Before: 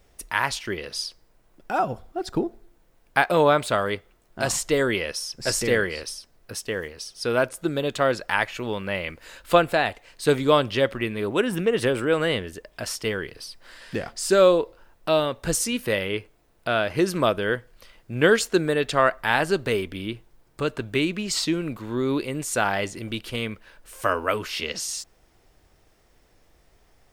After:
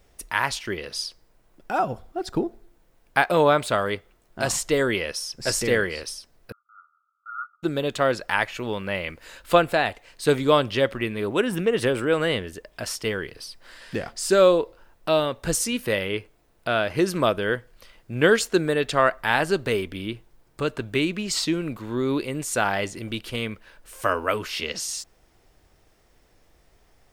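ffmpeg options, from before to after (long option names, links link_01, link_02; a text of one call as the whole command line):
ffmpeg -i in.wav -filter_complex "[0:a]asettb=1/sr,asplit=3[link_01][link_02][link_03];[link_01]atrim=end=6.524[link_04];[link_02]atrim=start=6.52:end=7.63,asetpts=PTS-STARTPTS,afade=type=in:duration=0.004:curve=qsin,afade=type=out:start_time=1.106:duration=0.004:curve=qsin,asuperpass=centerf=1300:order=20:qfactor=4.8[link_05];[link_03]atrim=start=7.626[link_06];[link_04][link_05]acrossfade=duration=0.004:curve1=hsin:curve2=qsin[link_07];[link_07][link_06]acrossfade=duration=0.004:curve1=qsin:curve2=hsin" out.wav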